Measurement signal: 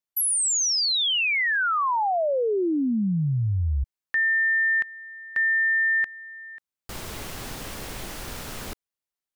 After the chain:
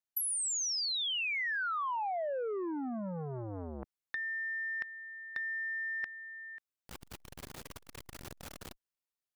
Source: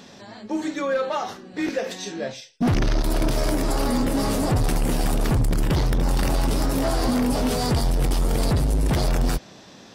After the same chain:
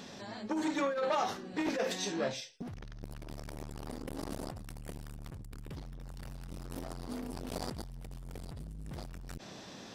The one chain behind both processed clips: negative-ratio compressor -25 dBFS, ratio -0.5; core saturation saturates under 740 Hz; gain -8.5 dB

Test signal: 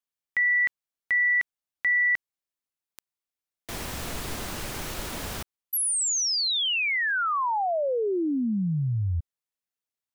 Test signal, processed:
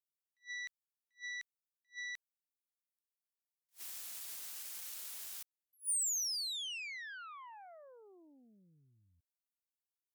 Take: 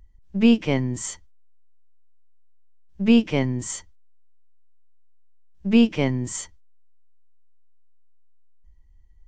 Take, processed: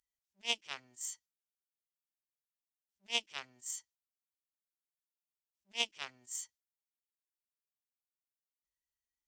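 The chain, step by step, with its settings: added harmonics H 2 -9 dB, 3 -7 dB, 4 -23 dB, 6 -35 dB, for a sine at -5.5 dBFS; differentiator; attack slew limiter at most 360 dB/s; gain +1 dB

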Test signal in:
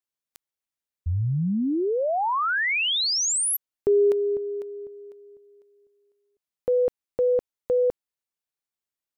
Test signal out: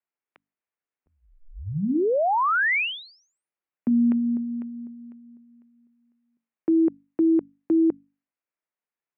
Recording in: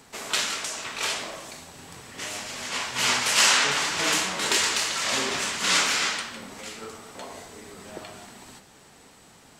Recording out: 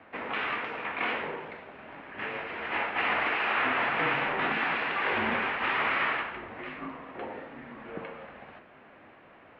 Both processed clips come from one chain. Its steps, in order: notches 50/100/150/200/250/300/350/400/450 Hz; limiter -17 dBFS; mistuned SSB -170 Hz 350–2700 Hz; gain +2.5 dB

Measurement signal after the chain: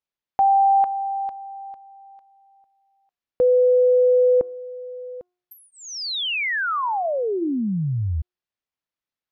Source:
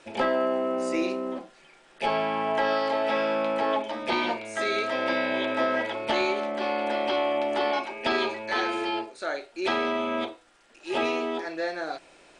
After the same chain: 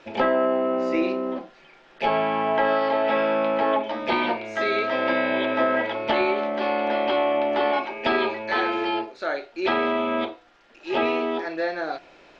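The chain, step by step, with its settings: treble ducked by the level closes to 1900 Hz, closed at -18.5 dBFS; running mean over 5 samples; de-hum 358.6 Hz, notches 4; gain +4 dB

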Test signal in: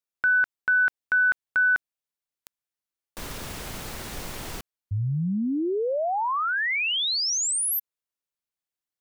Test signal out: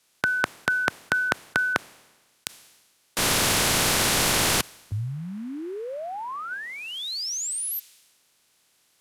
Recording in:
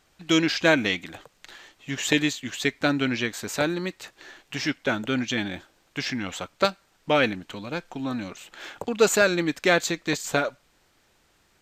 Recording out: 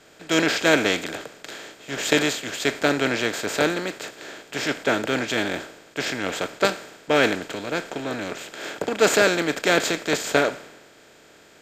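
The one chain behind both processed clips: per-bin compression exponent 0.4; three-band expander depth 100%; gain -5 dB

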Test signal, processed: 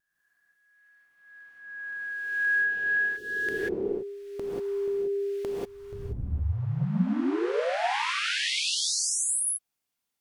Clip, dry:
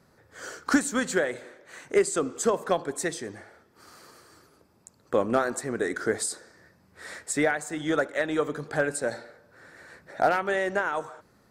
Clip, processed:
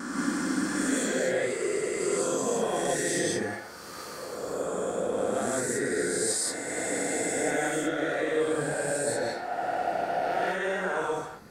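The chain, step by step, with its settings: spectral swells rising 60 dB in 2.04 s; dynamic EQ 1200 Hz, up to -6 dB, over -40 dBFS, Q 1.9; reverse; compressor 12:1, threshold -32 dBFS; reverse; vibrato 0.36 Hz 6.5 cents; non-linear reverb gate 0.21 s rising, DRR -5 dB; gain +1 dB

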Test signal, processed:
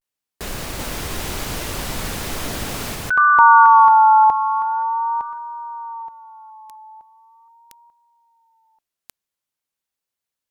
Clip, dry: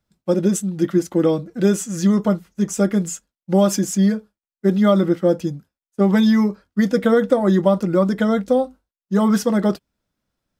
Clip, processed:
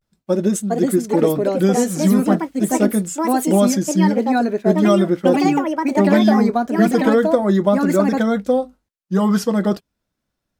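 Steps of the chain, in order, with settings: echoes that change speed 0.483 s, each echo +4 st, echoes 2; vibrato 0.41 Hz 68 cents

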